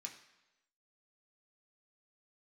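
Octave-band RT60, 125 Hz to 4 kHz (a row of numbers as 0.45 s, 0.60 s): 0.90 s, 0.90 s, 1.0 s, 1.0 s, 1.0 s, 0.95 s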